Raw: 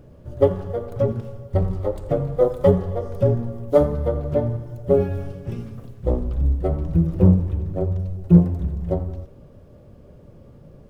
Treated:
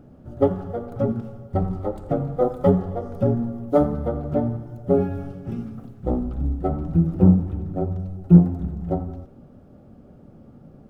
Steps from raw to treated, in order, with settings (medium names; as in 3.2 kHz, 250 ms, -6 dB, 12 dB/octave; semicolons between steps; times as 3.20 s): small resonant body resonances 240/760/1300 Hz, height 12 dB, ringing for 20 ms; trim -6.5 dB